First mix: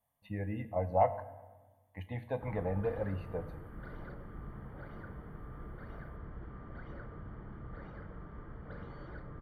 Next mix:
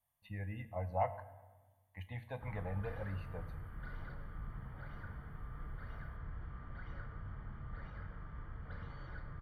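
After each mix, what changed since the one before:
background: send +11.5 dB; master: add bell 360 Hz -12.5 dB 2.3 oct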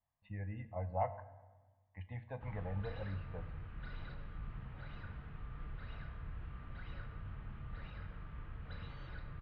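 background: remove polynomial smoothing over 41 samples; master: add air absorption 420 m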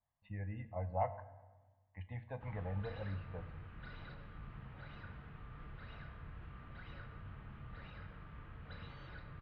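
background: add low shelf 64 Hz -10 dB

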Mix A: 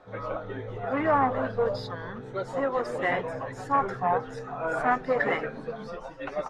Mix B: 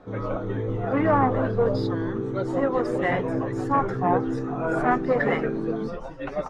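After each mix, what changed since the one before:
background: remove fixed phaser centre 1700 Hz, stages 8; master: add low shelf 340 Hz +10 dB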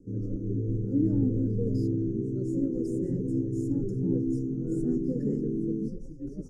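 master: add inverse Chebyshev band-stop 650–3800 Hz, stop band 40 dB

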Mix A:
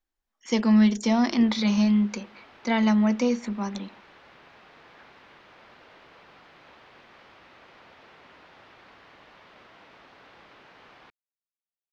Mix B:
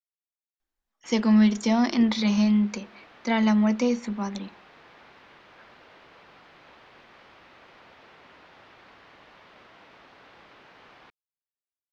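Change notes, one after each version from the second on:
speech: entry +0.60 s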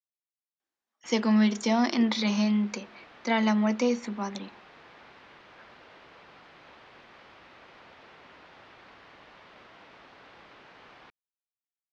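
speech: add HPF 240 Hz; master: add LPF 10000 Hz

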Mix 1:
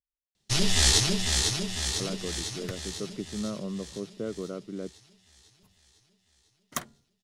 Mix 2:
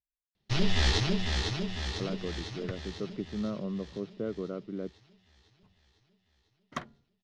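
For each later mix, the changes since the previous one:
master: add air absorption 240 m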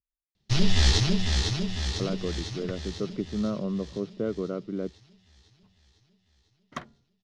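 speech +5.0 dB; first sound: add tone controls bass +6 dB, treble +9 dB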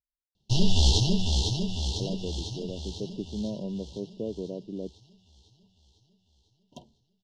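speech -4.0 dB; second sound -6.5 dB; master: add brick-wall FIR band-stop 1000–2700 Hz

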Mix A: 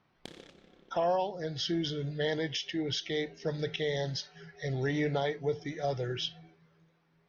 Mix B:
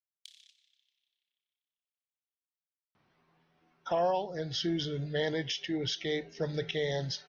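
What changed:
speech: entry +2.95 s; background: add inverse Chebyshev high-pass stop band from 680 Hz, stop band 70 dB

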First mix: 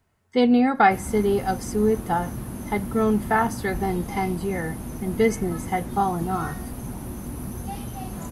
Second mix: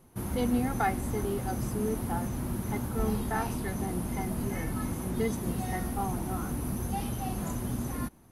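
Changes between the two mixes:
speech -12.0 dB; background: entry -0.75 s

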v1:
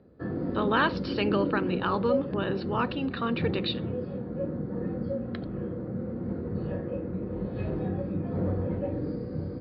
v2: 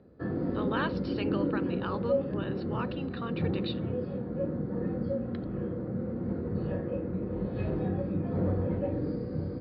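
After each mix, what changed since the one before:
speech -8.0 dB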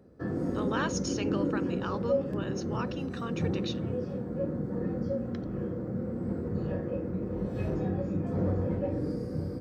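master: remove steep low-pass 4700 Hz 96 dB/oct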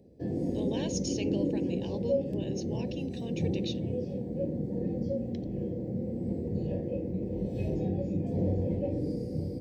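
master: add Butterworth band-stop 1300 Hz, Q 0.79

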